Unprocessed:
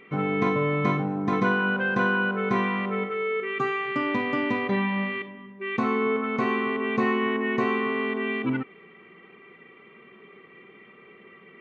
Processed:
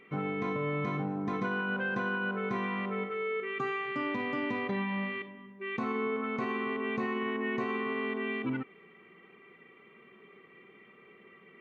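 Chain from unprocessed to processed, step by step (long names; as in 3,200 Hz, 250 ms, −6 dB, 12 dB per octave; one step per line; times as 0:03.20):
brickwall limiter −18 dBFS, peak gain reduction 6.5 dB
level −6 dB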